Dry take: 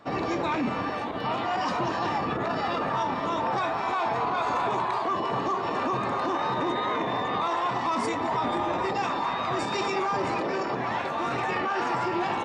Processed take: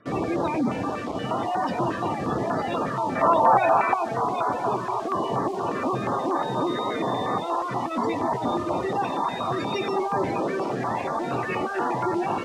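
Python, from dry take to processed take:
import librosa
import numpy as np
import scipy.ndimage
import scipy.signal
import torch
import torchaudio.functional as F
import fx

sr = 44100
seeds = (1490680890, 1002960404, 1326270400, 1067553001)

p1 = fx.spec_gate(x, sr, threshold_db=-20, keep='strong')
p2 = fx.band_shelf(p1, sr, hz=1200.0, db=8.5, octaves=2.6, at=(3.15, 3.94))
p3 = fx.quant_dither(p2, sr, seeds[0], bits=6, dither='none')
p4 = p2 + (p3 * librosa.db_to_amplitude(-4.0))
p5 = fx.air_absorb(p4, sr, metres=78.0)
y = fx.filter_held_notch(p5, sr, hz=8.4, low_hz=830.0, high_hz=2800.0)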